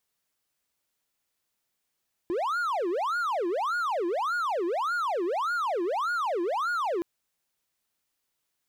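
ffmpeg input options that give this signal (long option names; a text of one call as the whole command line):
ffmpeg -f lavfi -i "aevalsrc='0.0668*(1-4*abs(mod((889*t-551/(2*PI*1.7)*sin(2*PI*1.7*t))+0.25,1)-0.5))':duration=4.72:sample_rate=44100" out.wav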